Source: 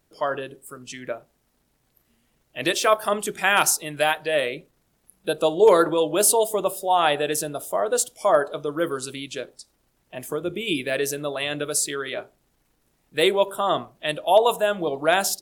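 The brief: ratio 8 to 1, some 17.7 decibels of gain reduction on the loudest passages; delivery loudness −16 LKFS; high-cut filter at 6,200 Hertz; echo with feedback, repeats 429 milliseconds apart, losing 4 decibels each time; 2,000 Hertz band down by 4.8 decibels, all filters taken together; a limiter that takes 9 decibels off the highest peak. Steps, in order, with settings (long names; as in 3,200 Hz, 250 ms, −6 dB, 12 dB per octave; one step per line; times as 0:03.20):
low-pass filter 6,200 Hz
parametric band 2,000 Hz −6.5 dB
downward compressor 8 to 1, threshold −30 dBFS
brickwall limiter −25.5 dBFS
repeating echo 429 ms, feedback 63%, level −4 dB
level +19 dB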